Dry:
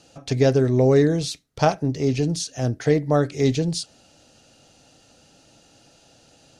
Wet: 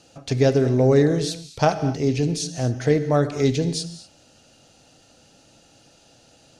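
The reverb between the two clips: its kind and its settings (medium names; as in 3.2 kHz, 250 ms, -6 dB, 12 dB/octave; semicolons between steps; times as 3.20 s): gated-style reverb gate 270 ms flat, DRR 10.5 dB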